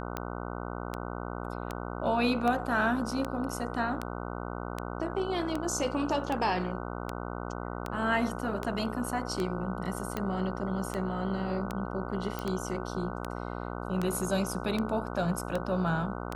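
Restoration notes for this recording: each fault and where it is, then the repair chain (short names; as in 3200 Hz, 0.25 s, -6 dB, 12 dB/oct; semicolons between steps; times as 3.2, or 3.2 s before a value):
buzz 60 Hz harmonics 25 -37 dBFS
tick 78 rpm -18 dBFS
12.39 pop -19 dBFS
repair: de-click; de-hum 60 Hz, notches 25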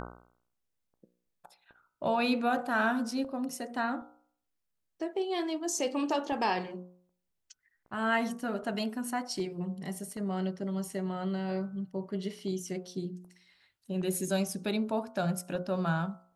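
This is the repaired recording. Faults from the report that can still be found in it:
none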